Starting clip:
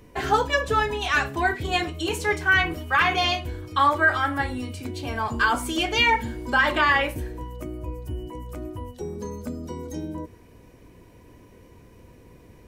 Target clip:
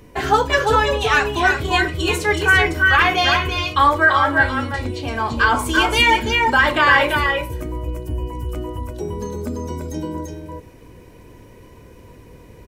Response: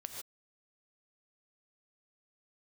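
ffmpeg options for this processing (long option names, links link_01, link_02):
-filter_complex "[0:a]aecho=1:1:339|341:0.501|0.422,asettb=1/sr,asplit=3[link_01][link_02][link_03];[link_01]atrim=end=4.064[link_04];[link_02]atrim=start=4.06:end=5.59,asetpts=PTS-STARTPTS,afade=type=in:duration=0.004:curve=qsin,afade=type=out:start_time=1.526:duration=0.004:curve=qsin,acrossover=split=6600[link_05][link_06];[link_06]acompressor=threshold=-59dB:ratio=4:attack=1:release=60[link_07];[link_05][link_07]amix=inputs=2:normalize=0[link_08];[link_03]atrim=start=5.586[link_09];[link_04][link_08]acrossfade=duration=0.004:curve1=hsin:curve2=qsin[link_10];[link_10][link_09]acrossfade=duration=0.004:curve1=qsin:curve2=hsin,volume=5dB"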